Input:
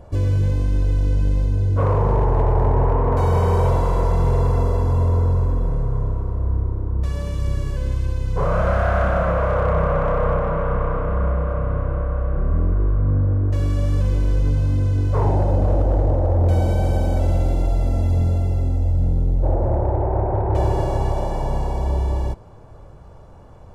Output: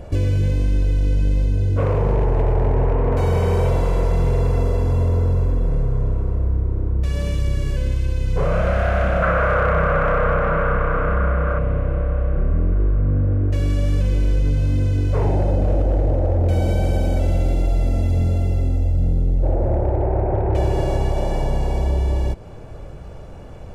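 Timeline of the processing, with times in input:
9.22–11.59 bell 1400 Hz +11 dB 0.95 oct
whole clip: fifteen-band EQ 100 Hz -3 dB, 1000 Hz -8 dB, 2500 Hz +5 dB; compressor 2:1, threshold -28 dBFS; gain +8 dB

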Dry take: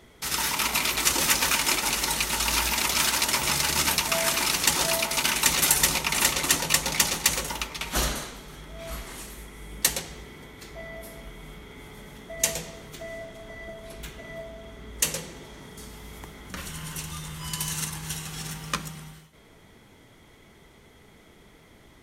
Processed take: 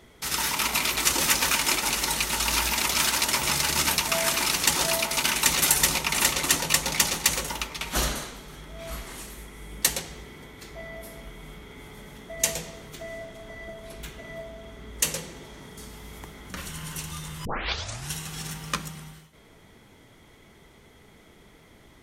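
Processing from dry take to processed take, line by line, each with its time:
17.45 tape start 0.67 s

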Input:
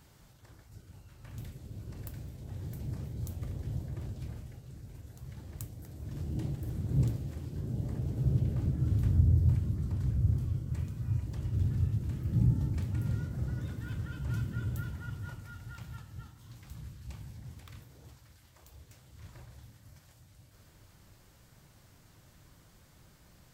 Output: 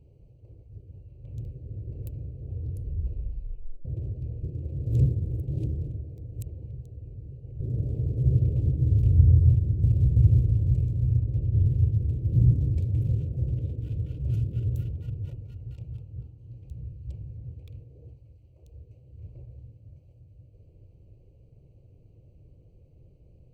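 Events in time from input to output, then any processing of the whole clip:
2.46 tape stop 1.39 s
4.43–7.6 reverse
9.5–10.16 echo throw 0.33 s, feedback 75%, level 0 dB
11.17–11.66 high shelf 4200 Hz -6 dB
whole clip: Wiener smoothing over 25 samples; EQ curve 120 Hz 0 dB, 210 Hz -11 dB, 480 Hz +1 dB, 1000 Hz -25 dB, 1600 Hz -27 dB, 2500 Hz -6 dB, 4900 Hz -11 dB; gain +7.5 dB

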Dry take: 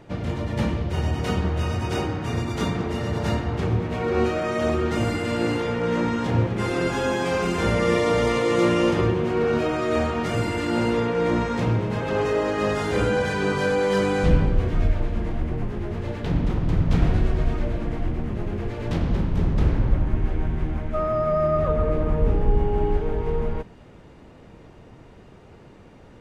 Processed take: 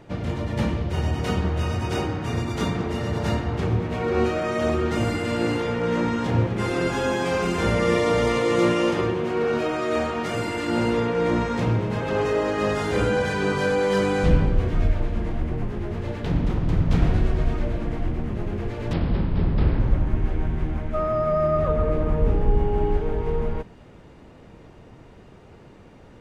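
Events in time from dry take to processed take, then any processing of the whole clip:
8.72–10.68 low shelf 140 Hz -10.5 dB
18.93–19.8 steep low-pass 5200 Hz 96 dB/oct

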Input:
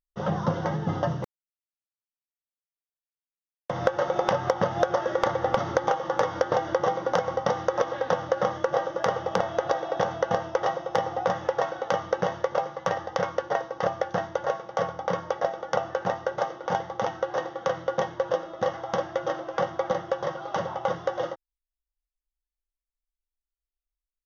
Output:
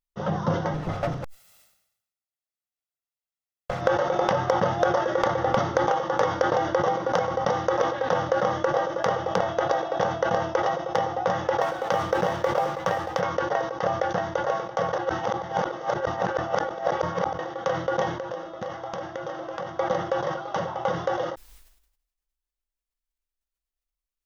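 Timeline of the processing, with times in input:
0.74–3.81 minimum comb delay 1.5 ms
11.61–13.2 G.711 law mismatch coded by mu
14.93–17.39 reverse
18.09–19.69 compressor 10:1, threshold -28 dBFS
whole clip: sustainer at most 69 dB/s

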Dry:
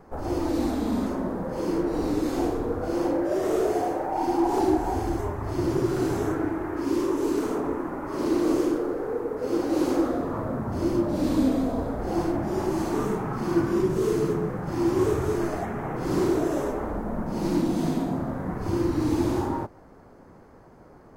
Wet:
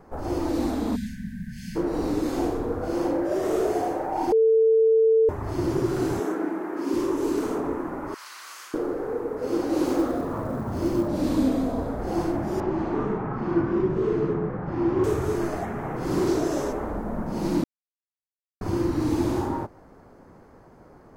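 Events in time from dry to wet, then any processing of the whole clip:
0.96–1.76 spectral delete 250–1500 Hz
4.32–5.29 bleep 446 Hz -15 dBFS
6.2–6.94 elliptic high-pass 180 Hz
8.14–8.74 HPF 1300 Hz 24 dB/oct
9.84–11.08 short-mantissa float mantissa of 4-bit
12.6–15.04 LPF 2300 Hz
16.27–16.73 bell 5200 Hz +8 dB 1 oct
17.64–18.61 mute

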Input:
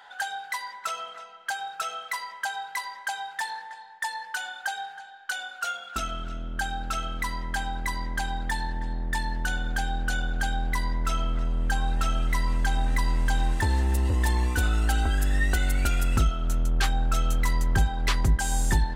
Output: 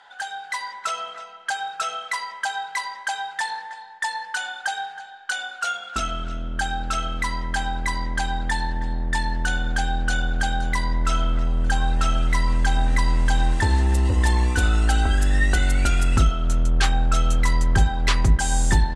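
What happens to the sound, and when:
9.9–10.36 echo throw 0.52 s, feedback 60%, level -14 dB
whole clip: LPF 9700 Hz 24 dB/oct; de-hum 75.07 Hz, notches 38; AGC gain up to 5 dB

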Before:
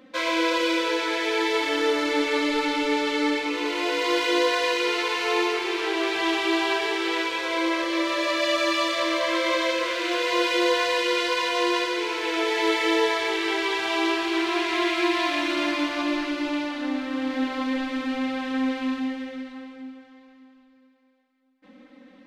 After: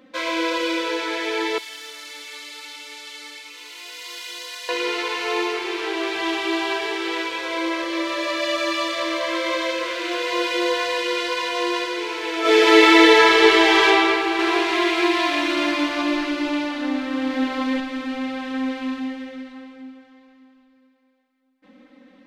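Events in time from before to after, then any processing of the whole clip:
1.58–4.69 differentiator
12.4–13.85 reverb throw, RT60 2.8 s, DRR -11.5 dB
14.39–17.8 gain +3.5 dB

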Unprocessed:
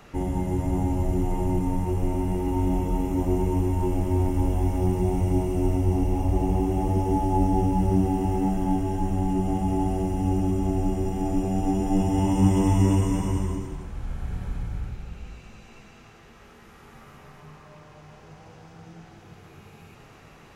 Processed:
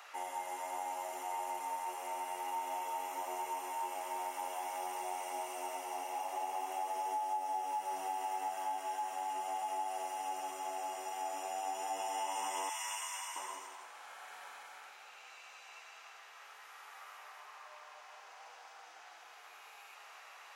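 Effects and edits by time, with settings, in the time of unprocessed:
12.69–13.36 HPF 1300 Hz
whole clip: HPF 740 Hz 24 dB/oct; compressor, threshold -34 dBFS

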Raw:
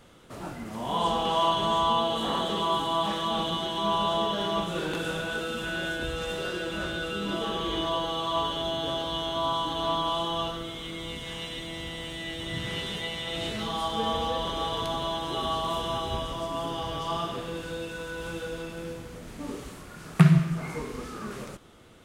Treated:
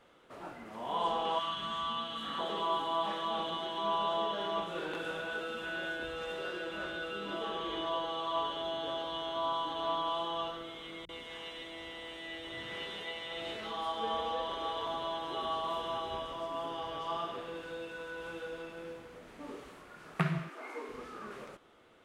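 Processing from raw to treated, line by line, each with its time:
1.39–2.39 spectral gain 310–1100 Hz -13 dB
11.05–14.87 bands offset in time lows, highs 40 ms, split 150 Hz
20.49–20.89 brick-wall FIR high-pass 230 Hz
whole clip: tone controls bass -13 dB, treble -11 dB; gain -5 dB

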